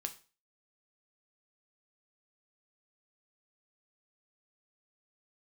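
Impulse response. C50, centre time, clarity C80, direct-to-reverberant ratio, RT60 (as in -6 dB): 15.0 dB, 8 ms, 19.5 dB, 6.0 dB, 0.35 s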